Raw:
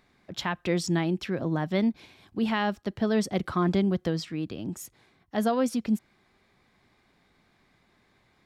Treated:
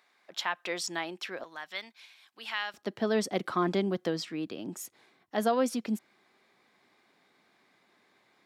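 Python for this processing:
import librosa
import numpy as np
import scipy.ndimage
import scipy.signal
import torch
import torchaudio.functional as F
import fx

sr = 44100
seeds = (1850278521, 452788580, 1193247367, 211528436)

y = fx.highpass(x, sr, hz=fx.steps((0.0, 680.0), (1.44, 1500.0), (2.74, 280.0)), slope=12)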